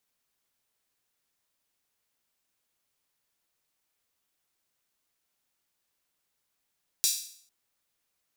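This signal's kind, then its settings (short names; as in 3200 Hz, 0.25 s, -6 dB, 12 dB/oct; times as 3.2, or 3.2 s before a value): open hi-hat length 0.45 s, high-pass 4800 Hz, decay 0.57 s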